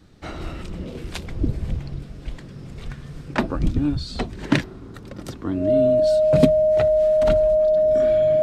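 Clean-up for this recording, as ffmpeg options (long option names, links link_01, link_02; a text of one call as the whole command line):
ffmpeg -i in.wav -af "bandreject=frequency=620:width=30" out.wav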